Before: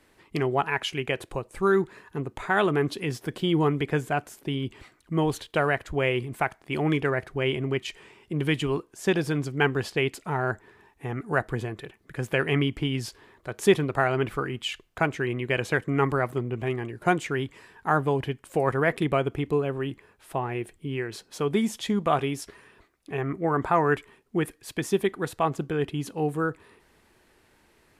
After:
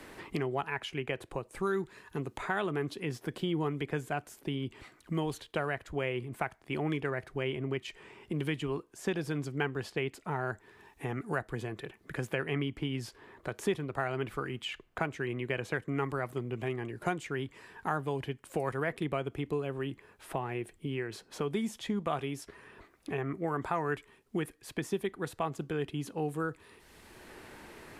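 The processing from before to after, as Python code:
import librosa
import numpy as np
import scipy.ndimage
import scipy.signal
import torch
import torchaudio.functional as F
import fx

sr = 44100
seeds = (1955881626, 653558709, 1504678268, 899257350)

y = fx.band_squash(x, sr, depth_pct=70)
y = y * 10.0 ** (-8.5 / 20.0)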